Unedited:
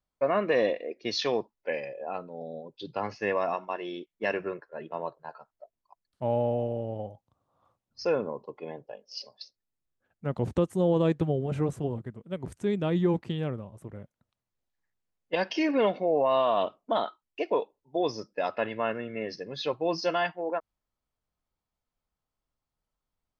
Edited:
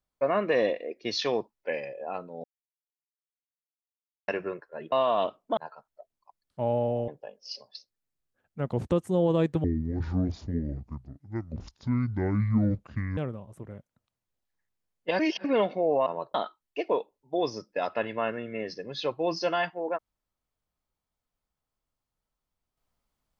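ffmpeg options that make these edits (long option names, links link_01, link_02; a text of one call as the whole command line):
ffmpeg -i in.wav -filter_complex "[0:a]asplit=12[link_01][link_02][link_03][link_04][link_05][link_06][link_07][link_08][link_09][link_10][link_11][link_12];[link_01]atrim=end=2.44,asetpts=PTS-STARTPTS,afade=type=out:start_time=2.436:duration=0.004:curve=hsin[link_13];[link_02]atrim=start=2.44:end=4.28,asetpts=PTS-STARTPTS,volume=0[link_14];[link_03]atrim=start=4.28:end=4.922,asetpts=PTS-STARTPTS,afade=type=in:duration=0.004:curve=hsin[link_15];[link_04]atrim=start=16.308:end=16.962[link_16];[link_05]atrim=start=5.198:end=6.712[link_17];[link_06]atrim=start=8.738:end=11.304[link_18];[link_07]atrim=start=11.3:end=13.42,asetpts=PTS-STARTPTS,asetrate=26460,aresample=44100[link_19];[link_08]atrim=start=13.416:end=15.442[link_20];[link_09]atrim=start=15.438:end=15.692,asetpts=PTS-STARTPTS,areverse[link_21];[link_10]atrim=start=15.688:end=16.312[link_22];[link_11]atrim=start=4.918:end=5.202[link_23];[link_12]atrim=start=16.958[link_24];[link_13][link_14][link_15]concat=n=3:v=0:a=1[link_25];[link_25][link_16]acrossfade=duration=0.004:curve1=hsin:curve2=hsin[link_26];[link_26][link_17]acrossfade=duration=0.004:curve1=hsin:curve2=hsin[link_27];[link_27][link_18]acrossfade=duration=0.004:curve1=hsin:curve2=hsin[link_28];[link_28][link_19]acrossfade=duration=0.004:curve1=hsin:curve2=hsin[link_29];[link_29][link_20]acrossfade=duration=0.004:curve1=hsin:curve2=hsin[link_30];[link_30][link_21]acrossfade=duration=0.004:curve1=hsin:curve2=hsin[link_31];[link_31][link_22]acrossfade=duration=0.004:curve1=hsin:curve2=hsin[link_32];[link_32][link_23]acrossfade=duration=0.004:curve1=hsin:curve2=hsin[link_33];[link_33][link_24]acrossfade=duration=0.004:curve1=hsin:curve2=hsin" out.wav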